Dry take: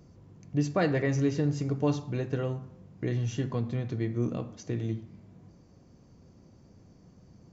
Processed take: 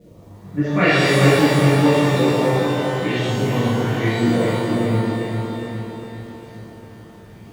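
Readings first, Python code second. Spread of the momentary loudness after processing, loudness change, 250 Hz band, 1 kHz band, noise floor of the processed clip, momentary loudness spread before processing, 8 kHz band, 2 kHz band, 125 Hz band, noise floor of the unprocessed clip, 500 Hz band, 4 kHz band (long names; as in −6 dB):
17 LU, +12.5 dB, +13.0 dB, +18.0 dB, −43 dBFS, 10 LU, can't be measured, +19.0 dB, +10.5 dB, −58 dBFS, +14.0 dB, +21.5 dB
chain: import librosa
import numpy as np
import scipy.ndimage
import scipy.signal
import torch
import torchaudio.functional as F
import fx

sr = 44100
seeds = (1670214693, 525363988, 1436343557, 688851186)

y = fx.high_shelf(x, sr, hz=3500.0, db=9.5)
y = fx.filter_lfo_lowpass(y, sr, shape='saw_up', hz=0.92, low_hz=490.0, high_hz=3900.0, q=4.2)
y = fx.dmg_crackle(y, sr, seeds[0], per_s=390.0, level_db=-55.0)
y = fx.echo_feedback(y, sr, ms=405, feedback_pct=56, wet_db=-5)
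y = fx.rev_shimmer(y, sr, seeds[1], rt60_s=1.4, semitones=12, shimmer_db=-8, drr_db=-10.5)
y = F.gain(torch.from_numpy(y), -1.5).numpy()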